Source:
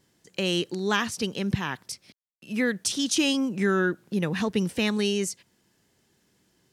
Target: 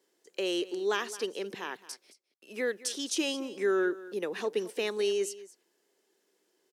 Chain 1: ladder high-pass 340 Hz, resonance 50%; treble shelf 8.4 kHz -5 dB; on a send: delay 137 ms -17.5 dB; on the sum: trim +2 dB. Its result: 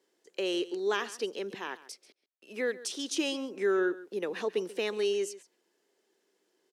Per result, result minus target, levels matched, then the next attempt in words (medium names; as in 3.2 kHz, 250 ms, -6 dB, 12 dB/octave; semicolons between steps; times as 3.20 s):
echo 80 ms early; 8 kHz band -2.5 dB
ladder high-pass 340 Hz, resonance 50%; treble shelf 8.4 kHz -5 dB; on a send: delay 217 ms -17.5 dB; on the sum: trim +2 dB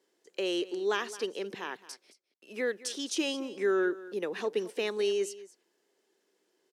8 kHz band -2.5 dB
ladder high-pass 340 Hz, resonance 50%; treble shelf 8.4 kHz +2.5 dB; on a send: delay 217 ms -17.5 dB; on the sum: trim +2 dB